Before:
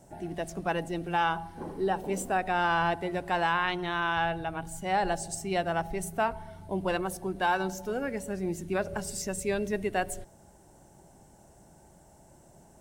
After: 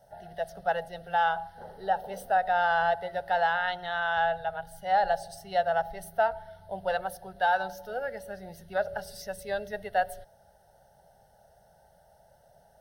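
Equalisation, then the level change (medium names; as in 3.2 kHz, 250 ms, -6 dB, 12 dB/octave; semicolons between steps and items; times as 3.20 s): dynamic bell 830 Hz, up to +4 dB, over -35 dBFS, Q 0.99; resonant low shelf 410 Hz -6.5 dB, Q 1.5; static phaser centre 1.6 kHz, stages 8; 0.0 dB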